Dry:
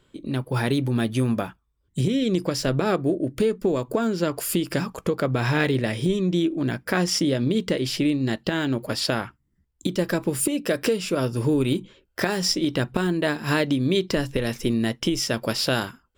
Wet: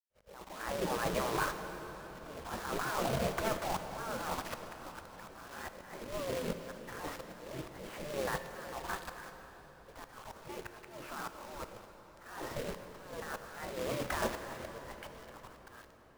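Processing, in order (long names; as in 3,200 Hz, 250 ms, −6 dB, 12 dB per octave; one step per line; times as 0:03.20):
fade-out on the ending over 1.22 s
downward expander −47 dBFS
low-pass filter 1,200 Hz 24 dB per octave
gate on every frequency bin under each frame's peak −20 dB weak
compressor whose output falls as the input rises −48 dBFS, ratio −1
log-companded quantiser 4 bits
volume swells 770 ms
echo ahead of the sound 48 ms −21.5 dB
convolution reverb RT60 4.9 s, pre-delay 13 ms, DRR 7 dB
level +13.5 dB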